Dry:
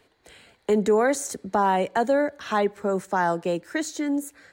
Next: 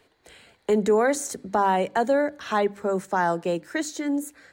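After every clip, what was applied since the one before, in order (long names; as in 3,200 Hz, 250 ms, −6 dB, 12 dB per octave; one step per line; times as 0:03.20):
mains-hum notches 50/100/150/200/250/300 Hz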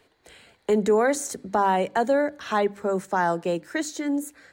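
no processing that can be heard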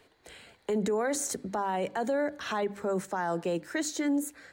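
brickwall limiter −22 dBFS, peak gain reduction 10.5 dB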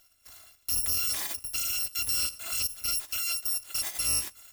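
samples in bit-reversed order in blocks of 256 samples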